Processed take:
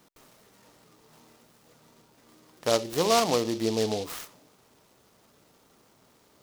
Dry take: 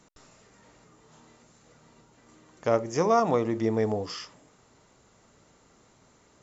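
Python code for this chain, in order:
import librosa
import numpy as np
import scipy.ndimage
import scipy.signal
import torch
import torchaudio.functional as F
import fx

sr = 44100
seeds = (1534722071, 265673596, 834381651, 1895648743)

y = fx.low_shelf(x, sr, hz=100.0, db=-10.0)
y = fx.noise_mod_delay(y, sr, seeds[0], noise_hz=4100.0, depth_ms=0.093)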